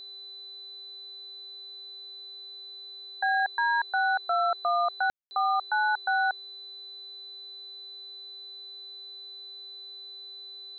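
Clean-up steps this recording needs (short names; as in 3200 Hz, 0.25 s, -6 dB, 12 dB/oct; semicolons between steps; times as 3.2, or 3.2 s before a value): de-hum 393.9 Hz, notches 33; notch 4000 Hz, Q 30; room tone fill 5.1–5.31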